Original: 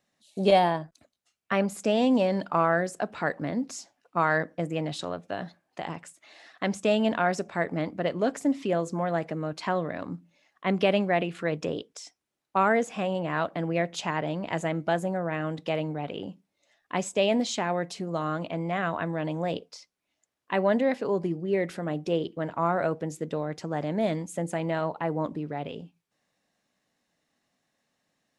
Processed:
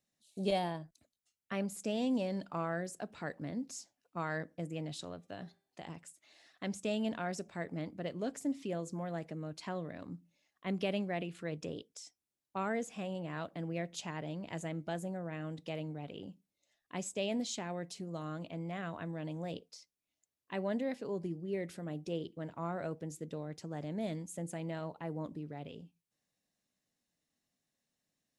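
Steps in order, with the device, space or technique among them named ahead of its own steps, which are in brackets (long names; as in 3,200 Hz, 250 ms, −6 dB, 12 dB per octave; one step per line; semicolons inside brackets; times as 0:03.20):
0:05.09–0:05.82: hum removal 394.9 Hz, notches 28
smiley-face EQ (low-shelf EQ 92 Hz +5.5 dB; parametric band 1,100 Hz −6.5 dB 2.4 octaves; high-shelf EQ 6,800 Hz +7 dB)
level −9 dB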